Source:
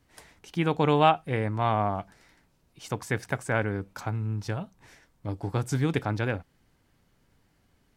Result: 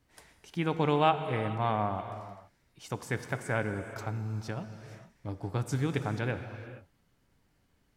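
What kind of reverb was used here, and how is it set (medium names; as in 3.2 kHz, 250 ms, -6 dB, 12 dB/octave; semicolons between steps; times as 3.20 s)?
gated-style reverb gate 490 ms flat, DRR 8.5 dB; trim -4.5 dB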